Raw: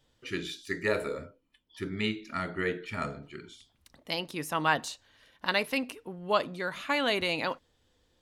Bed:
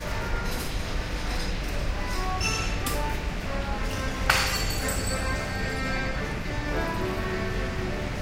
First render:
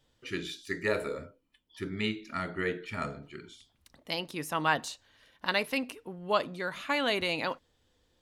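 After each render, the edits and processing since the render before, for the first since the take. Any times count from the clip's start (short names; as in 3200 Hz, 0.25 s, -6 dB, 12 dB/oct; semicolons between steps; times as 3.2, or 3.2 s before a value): gain -1 dB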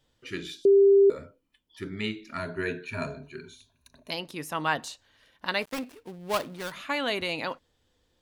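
0.65–1.1 bleep 396 Hz -14 dBFS; 2.37–4.11 ripple EQ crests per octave 1.5, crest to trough 14 dB; 5.62–6.72 switching dead time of 0.19 ms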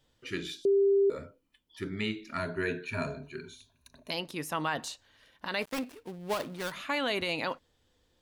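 limiter -20.5 dBFS, peak gain reduction 9.5 dB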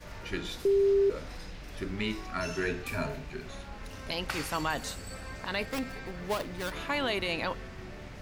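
add bed -14 dB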